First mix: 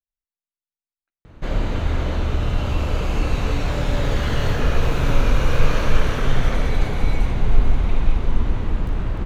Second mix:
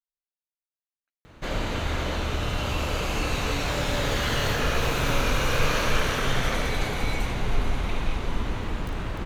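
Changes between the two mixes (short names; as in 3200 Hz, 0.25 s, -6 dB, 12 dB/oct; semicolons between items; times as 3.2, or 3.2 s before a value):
speech -3.5 dB; master: add tilt +2 dB/oct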